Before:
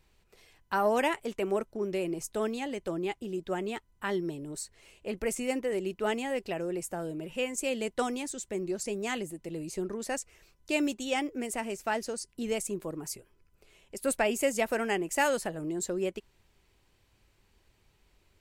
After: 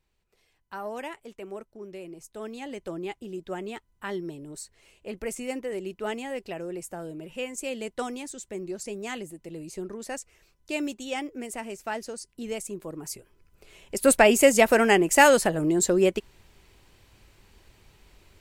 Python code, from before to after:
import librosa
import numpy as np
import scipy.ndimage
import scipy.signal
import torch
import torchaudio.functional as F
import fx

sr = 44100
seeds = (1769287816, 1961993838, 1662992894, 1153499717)

y = fx.gain(x, sr, db=fx.line((2.3, -9.0), (2.71, -1.5), (12.78, -1.5), (13.95, 10.5)))